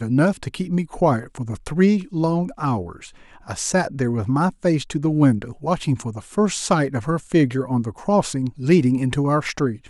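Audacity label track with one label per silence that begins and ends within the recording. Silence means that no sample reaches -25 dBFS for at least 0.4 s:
2.900000	3.500000	silence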